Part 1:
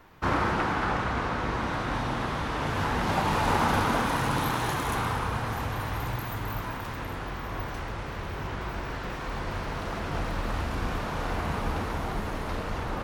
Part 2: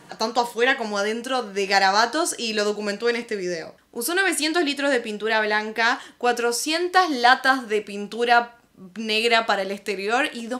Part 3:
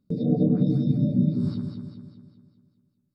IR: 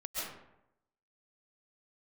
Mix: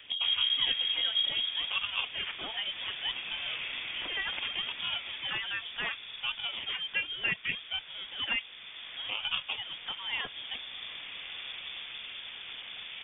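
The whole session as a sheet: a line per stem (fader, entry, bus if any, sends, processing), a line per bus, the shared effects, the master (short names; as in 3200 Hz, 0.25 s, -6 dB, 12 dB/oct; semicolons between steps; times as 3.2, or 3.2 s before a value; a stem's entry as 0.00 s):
-15.5 dB, 0.00 s, no send, dry
-13.5 dB, 0.00 s, no send, reverb removal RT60 0.64 s; decimation with a swept rate 16×, swing 160% 0.67 Hz
-3.0 dB, 0.00 s, no send, fixed phaser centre 670 Hz, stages 8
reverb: off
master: HPF 57 Hz; inverted band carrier 3500 Hz; three-band squash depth 40%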